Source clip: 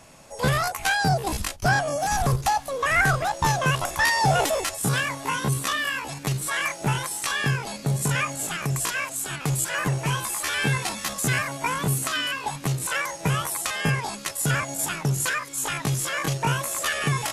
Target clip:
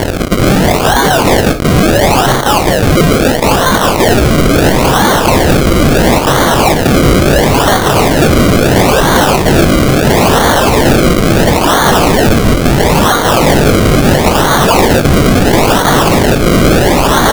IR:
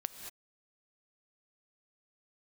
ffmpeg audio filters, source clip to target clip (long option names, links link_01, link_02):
-filter_complex "[0:a]acrossover=split=5300[link_01][link_02];[link_02]acompressor=threshold=-36dB:ratio=4:attack=1:release=60[link_03];[link_01][link_03]amix=inputs=2:normalize=0,highpass=210,areverse,acompressor=threshold=-31dB:ratio=12,areverse,aeval=exprs='val(0)+0.00178*(sin(2*PI*60*n/s)+sin(2*PI*2*60*n/s)/2+sin(2*PI*3*60*n/s)/3+sin(2*PI*4*60*n/s)/4+sin(2*PI*5*60*n/s)/5)':channel_layout=same,aeval=exprs='sgn(val(0))*max(abs(val(0))-0.00335,0)':channel_layout=same,crystalizer=i=7:c=0,acrusher=samples=34:mix=1:aa=0.000001:lfo=1:lforange=34:lforate=0.74,asoftclip=type=tanh:threshold=-22dB,asplit=2[link_04][link_05];[link_05]adelay=21,volume=-13.5dB[link_06];[link_04][link_06]amix=inputs=2:normalize=0[link_07];[1:a]atrim=start_sample=2205,atrim=end_sample=3528[link_08];[link_07][link_08]afir=irnorm=-1:irlink=0,alimiter=level_in=34.5dB:limit=-1dB:release=50:level=0:latency=1,volume=-1dB"